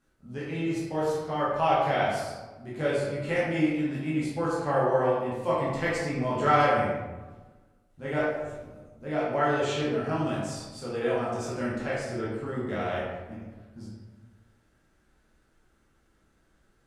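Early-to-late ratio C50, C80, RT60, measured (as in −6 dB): 0.0 dB, 3.0 dB, 1.3 s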